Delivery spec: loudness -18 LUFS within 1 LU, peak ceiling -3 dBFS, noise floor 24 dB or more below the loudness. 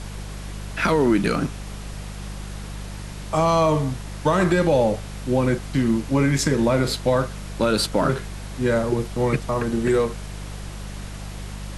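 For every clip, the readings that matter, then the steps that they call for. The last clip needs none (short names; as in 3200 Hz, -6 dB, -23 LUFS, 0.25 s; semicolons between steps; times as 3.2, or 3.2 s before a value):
hum 50 Hz; harmonics up to 200 Hz; hum level -31 dBFS; noise floor -34 dBFS; noise floor target -46 dBFS; loudness -22.0 LUFS; peak -6.0 dBFS; loudness target -18.0 LUFS
-> de-hum 50 Hz, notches 4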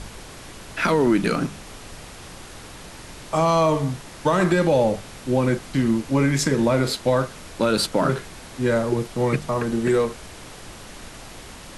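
hum none; noise floor -41 dBFS; noise floor target -46 dBFS
-> noise print and reduce 6 dB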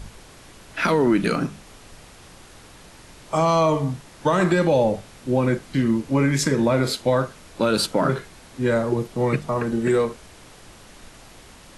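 noise floor -47 dBFS; loudness -22.0 LUFS; peak -6.0 dBFS; loudness target -18.0 LUFS
-> gain +4 dB; limiter -3 dBFS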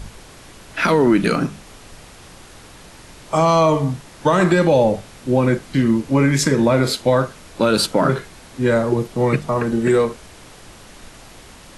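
loudness -18.0 LUFS; peak -3.0 dBFS; noise floor -43 dBFS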